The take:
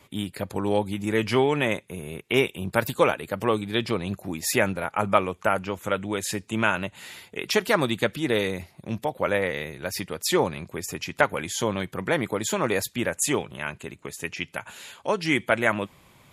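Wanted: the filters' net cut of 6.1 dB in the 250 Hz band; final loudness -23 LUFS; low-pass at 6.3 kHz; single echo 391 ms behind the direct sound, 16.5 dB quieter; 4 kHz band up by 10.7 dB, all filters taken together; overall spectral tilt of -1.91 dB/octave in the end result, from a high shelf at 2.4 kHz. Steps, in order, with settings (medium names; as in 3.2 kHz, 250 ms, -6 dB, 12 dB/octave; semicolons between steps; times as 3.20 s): low-pass 6.3 kHz; peaking EQ 250 Hz -9 dB; treble shelf 2.4 kHz +9 dB; peaking EQ 4 kHz +6.5 dB; delay 391 ms -16.5 dB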